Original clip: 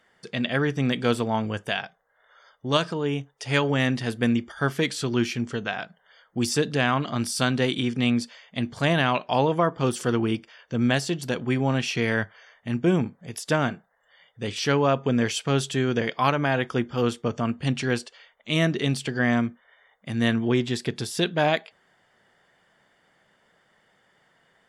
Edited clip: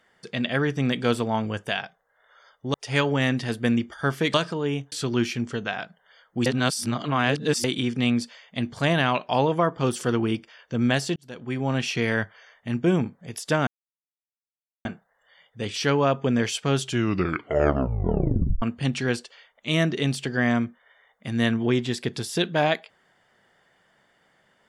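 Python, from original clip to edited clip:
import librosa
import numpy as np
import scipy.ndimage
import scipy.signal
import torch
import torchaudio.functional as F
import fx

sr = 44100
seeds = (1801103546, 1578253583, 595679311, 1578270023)

y = fx.edit(x, sr, fx.move(start_s=2.74, length_s=0.58, to_s=4.92),
    fx.reverse_span(start_s=6.46, length_s=1.18),
    fx.fade_in_span(start_s=11.16, length_s=0.65),
    fx.insert_silence(at_s=13.67, length_s=1.18),
    fx.tape_stop(start_s=15.62, length_s=1.82), tone=tone)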